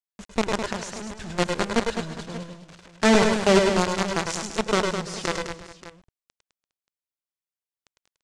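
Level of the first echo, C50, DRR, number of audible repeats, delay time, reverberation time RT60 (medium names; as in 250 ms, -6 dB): -4.5 dB, no reverb, no reverb, 5, 103 ms, no reverb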